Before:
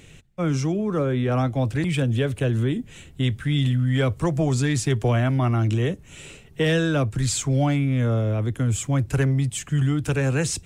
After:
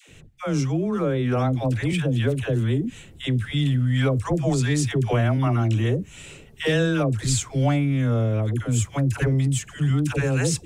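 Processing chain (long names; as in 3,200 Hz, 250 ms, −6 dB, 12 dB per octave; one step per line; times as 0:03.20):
all-pass dispersion lows, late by 92 ms, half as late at 650 Hz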